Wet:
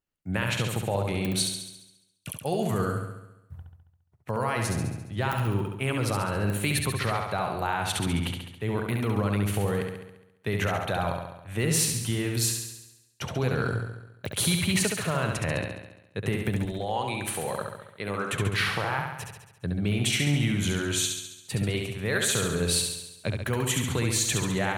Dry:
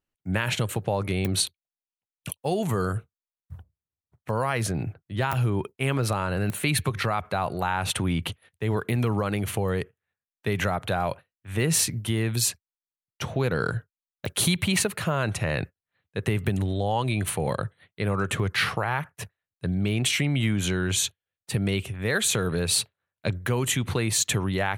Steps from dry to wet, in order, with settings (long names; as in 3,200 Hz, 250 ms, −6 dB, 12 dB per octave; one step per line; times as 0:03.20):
0:16.65–0:18.32: high-pass filter 340 Hz 6 dB per octave
flutter between parallel walls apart 11.8 metres, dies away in 0.92 s
level −3 dB